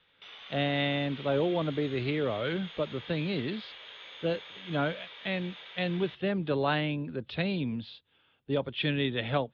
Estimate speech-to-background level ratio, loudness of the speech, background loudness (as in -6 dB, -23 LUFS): 13.5 dB, -31.5 LUFS, -45.0 LUFS